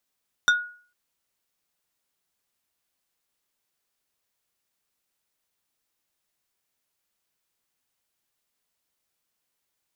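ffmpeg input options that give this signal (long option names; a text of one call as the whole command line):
ffmpeg -f lavfi -i "aevalsrc='0.224*pow(10,-3*t/0.45)*sin(2*PI*1450*t)+0.112*pow(10,-3*t/0.15)*sin(2*PI*3625*t)+0.0562*pow(10,-3*t/0.085)*sin(2*PI*5800*t)+0.0282*pow(10,-3*t/0.065)*sin(2*PI*7250*t)+0.0141*pow(10,-3*t/0.048)*sin(2*PI*9425*t)':duration=0.45:sample_rate=44100" out.wav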